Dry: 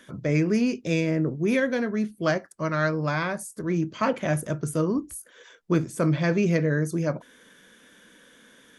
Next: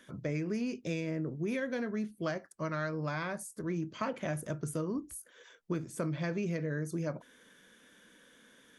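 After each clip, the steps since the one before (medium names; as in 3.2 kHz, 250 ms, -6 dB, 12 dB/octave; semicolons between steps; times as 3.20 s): compression, threshold -24 dBFS, peak gain reduction 7.5 dB; trim -6.5 dB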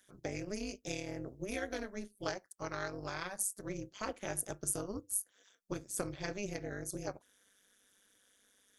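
tone controls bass -6 dB, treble +13 dB; AM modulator 200 Hz, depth 85%; upward expansion 1.5:1, over -58 dBFS; trim +2.5 dB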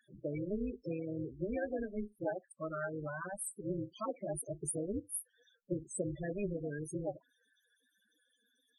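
loudest bins only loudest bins 8; trim +4.5 dB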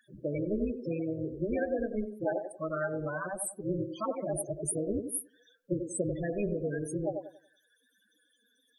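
feedback echo behind a band-pass 93 ms, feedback 31%, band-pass 450 Hz, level -5 dB; trim +5 dB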